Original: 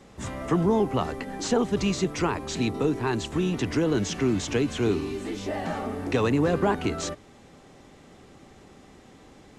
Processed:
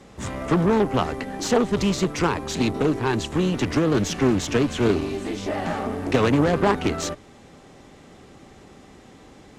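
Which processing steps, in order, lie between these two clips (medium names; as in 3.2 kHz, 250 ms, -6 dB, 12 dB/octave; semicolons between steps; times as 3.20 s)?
Chebyshev shaper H 2 -8 dB, 4 -20 dB, 8 -23 dB, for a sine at -11 dBFS; loudspeaker Doppler distortion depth 0.29 ms; trim +3.5 dB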